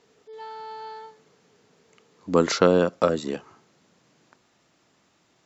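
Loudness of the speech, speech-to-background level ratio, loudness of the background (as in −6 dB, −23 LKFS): −22.5 LKFS, 17.5 dB, −40.0 LKFS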